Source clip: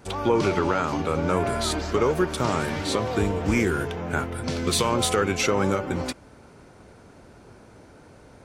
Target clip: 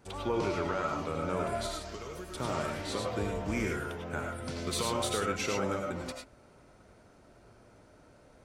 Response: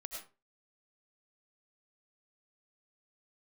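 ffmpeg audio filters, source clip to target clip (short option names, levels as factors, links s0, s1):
-filter_complex "[0:a]asettb=1/sr,asplit=3[s0][s1][s2];[s0]atrim=end=1.664[s3];[s1]atrim=start=1.66:end=2.35,asetpts=PTS-STARTPTS,afade=t=in:d=0.004:c=qsin,afade=t=out:st=0.686:d=0.004:c=qsin,acrossover=split=110|2800[s4][s5][s6];[s4]acompressor=threshold=0.0112:ratio=4[s7];[s5]acompressor=threshold=0.0224:ratio=4[s8];[s6]acompressor=threshold=0.02:ratio=4[s9];[s7][s8][s9]amix=inputs=3:normalize=0[s10];[s2]atrim=start=2.346[s11];[s3][s10]acrossfade=d=0.004:c1=hsin:c2=qsin[s12];[s12][s11]acrossfade=d=0.004:c1=qsin:c2=hsin[s13];[1:a]atrim=start_sample=2205,afade=t=out:st=0.17:d=0.01,atrim=end_sample=7938[s14];[s13][s14]afir=irnorm=-1:irlink=0,volume=0.531"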